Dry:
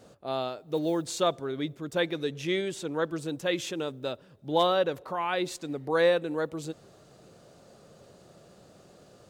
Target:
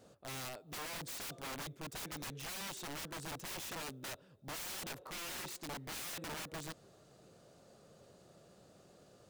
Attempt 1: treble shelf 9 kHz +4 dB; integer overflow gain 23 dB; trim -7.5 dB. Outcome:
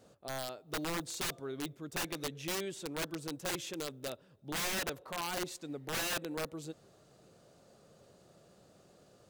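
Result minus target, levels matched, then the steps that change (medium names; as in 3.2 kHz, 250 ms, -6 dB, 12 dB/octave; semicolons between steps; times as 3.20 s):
integer overflow: distortion -14 dB
change: integer overflow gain 31.5 dB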